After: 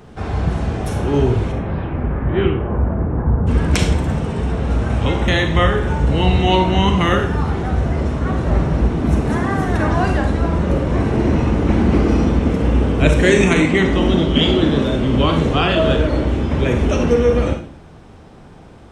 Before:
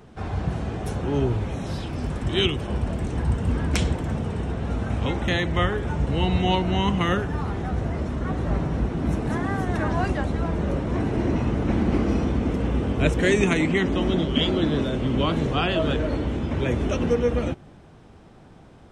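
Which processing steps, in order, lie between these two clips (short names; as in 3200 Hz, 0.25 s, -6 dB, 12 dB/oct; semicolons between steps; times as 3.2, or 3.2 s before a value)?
1.51–3.46 LPF 2500 Hz -> 1300 Hz 24 dB/oct; reverb RT60 0.50 s, pre-delay 33 ms, DRR 4.5 dB; gain +6 dB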